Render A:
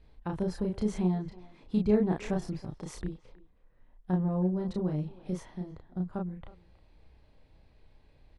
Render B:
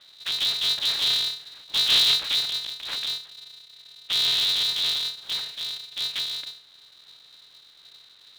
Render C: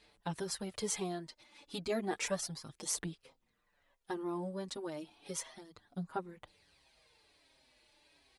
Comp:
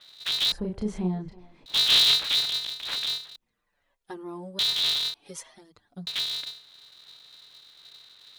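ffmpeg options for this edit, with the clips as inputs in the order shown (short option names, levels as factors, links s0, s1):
-filter_complex "[2:a]asplit=2[s0][s1];[1:a]asplit=4[s2][s3][s4][s5];[s2]atrim=end=0.522[s6];[0:a]atrim=start=0.518:end=1.662[s7];[s3]atrim=start=1.658:end=3.362[s8];[s0]atrim=start=3.358:end=4.592[s9];[s4]atrim=start=4.588:end=5.142[s10];[s1]atrim=start=5.138:end=6.072[s11];[s5]atrim=start=6.068[s12];[s6][s7]acrossfade=d=0.004:c1=hsin:c2=hsin[s13];[s13][s8]acrossfade=d=0.004:c1=hsin:c2=hsin[s14];[s14][s9]acrossfade=d=0.004:c1=hsin:c2=hsin[s15];[s15][s10]acrossfade=d=0.004:c1=hsin:c2=hsin[s16];[s16][s11]acrossfade=d=0.004:c1=hsin:c2=hsin[s17];[s17][s12]acrossfade=d=0.004:c1=hsin:c2=hsin"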